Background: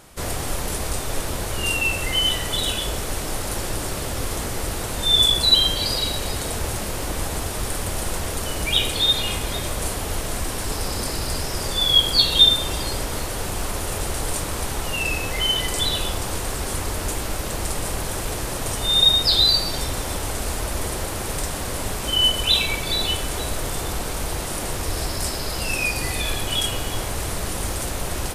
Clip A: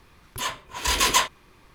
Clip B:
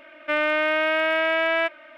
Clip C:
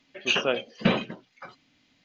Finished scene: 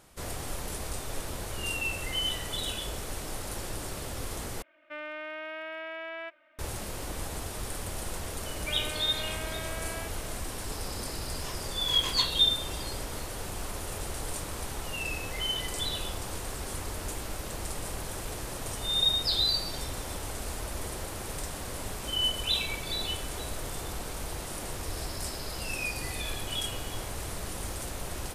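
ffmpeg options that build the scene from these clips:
-filter_complex "[2:a]asplit=2[s0][s1];[0:a]volume=0.316[s2];[s1]acompressor=threshold=0.02:ratio=6:attack=3.2:release=140:knee=1:detection=peak[s3];[1:a]acrossover=split=8300[s4][s5];[s5]acompressor=threshold=0.0126:ratio=4:attack=1:release=60[s6];[s4][s6]amix=inputs=2:normalize=0[s7];[s2]asplit=2[s8][s9];[s8]atrim=end=4.624[s10];[s0]atrim=end=1.97,asetpts=PTS-STARTPTS,volume=0.141[s11];[s9]atrim=start=6.586[s12];[s3]atrim=end=1.97,asetpts=PTS-STARTPTS,volume=0.562,afade=t=in:d=0.004:c=hsin,afade=t=out:st=1.966:d=0.004:c=hsin,adelay=8400[s13];[s7]atrim=end=1.74,asetpts=PTS-STARTPTS,volume=0.158,afade=t=in:d=0.004:c=hsin,afade=t=out:st=1.736:d=0.004:c=hsin,adelay=11030[s14];[s10][s11]acrossfade=d=0.004:c1=hsin:c2=hsin[s15];[s15][s12]acrossfade=d=0.004:c1=hsin:c2=hsin[s16];[s16][s13][s14]amix=inputs=3:normalize=0"

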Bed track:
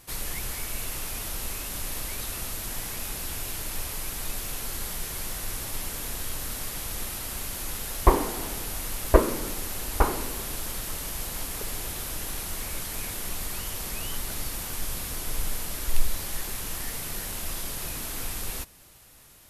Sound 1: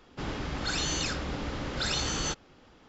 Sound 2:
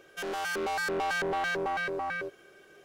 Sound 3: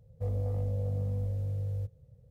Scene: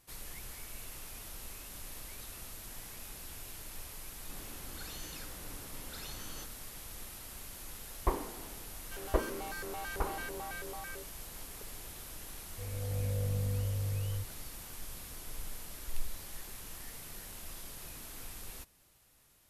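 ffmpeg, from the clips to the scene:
-filter_complex "[0:a]volume=0.224[s0];[3:a]dynaudnorm=f=110:g=9:m=3.76[s1];[1:a]atrim=end=2.88,asetpts=PTS-STARTPTS,volume=0.133,afade=t=in:d=0.004:c=hsin,afade=t=out:st=2.876:d=0.004:c=hsin,adelay=4120[s2];[2:a]atrim=end=2.84,asetpts=PTS-STARTPTS,volume=0.251,afade=t=in:d=0.004:c=hsin,afade=t=out:st=2.836:d=0.004:c=hsin,adelay=385434S[s3];[s1]atrim=end=2.3,asetpts=PTS-STARTPTS,volume=0.224,afade=t=in:d=0.004:c=hsin,afade=t=out:st=2.296:d=0.004:c=hsin,adelay=12370[s4];[s0][s2][s3][s4]amix=inputs=4:normalize=0"

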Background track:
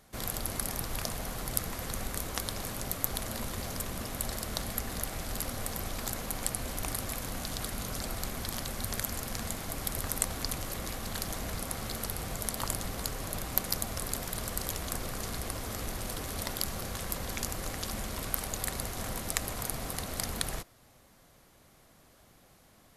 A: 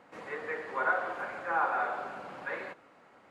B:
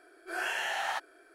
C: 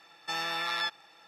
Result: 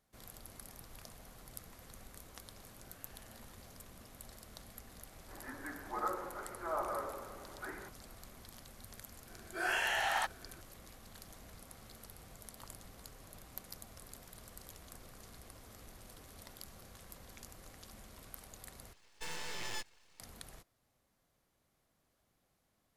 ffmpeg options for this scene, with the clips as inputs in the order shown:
-filter_complex "[2:a]asplit=2[s0][s1];[0:a]volume=0.126[s2];[s0]acompressor=threshold=0.00501:ratio=6:attack=3.2:release=140:knee=1:detection=peak[s3];[1:a]highpass=f=450:t=q:w=0.5412,highpass=f=450:t=q:w=1.307,lowpass=f=2400:t=q:w=0.5176,lowpass=f=2400:t=q:w=0.7071,lowpass=f=2400:t=q:w=1.932,afreqshift=-180[s4];[3:a]aeval=exprs='abs(val(0))':c=same[s5];[s2]asplit=2[s6][s7];[s6]atrim=end=18.934[s8];[s5]atrim=end=1.27,asetpts=PTS-STARTPTS,volume=0.422[s9];[s7]atrim=start=20.196[s10];[s3]atrim=end=1.34,asetpts=PTS-STARTPTS,volume=0.126,afade=t=in:d=0.004:c=hsin,afade=t=out:st=1.336:d=0.004:c=hsin,adelay=2550[s11];[s4]atrim=end=3.3,asetpts=PTS-STARTPTS,volume=0.398,afade=t=in:d=0.004:c=hsin,afade=t=out:st=3.296:d=0.004:c=hsin,adelay=5160[s12];[s1]atrim=end=1.34,asetpts=PTS-STARTPTS,volume=0.944,afade=t=in:d=0.004:c=hsin,afade=t=out:st=1.336:d=0.004:c=hsin,adelay=9270[s13];[s8][s9]acrossfade=d=0.004:c1=hsin:c2=hsin[s14];[s14][s10]acrossfade=d=0.004:c1=hsin:c2=hsin[s15];[s15][s11][s12][s13]amix=inputs=4:normalize=0"

